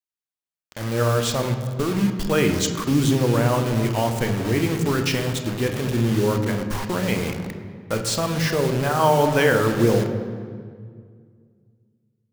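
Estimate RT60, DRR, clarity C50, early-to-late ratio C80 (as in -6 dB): 2.0 s, 5.5 dB, 8.0 dB, 9.0 dB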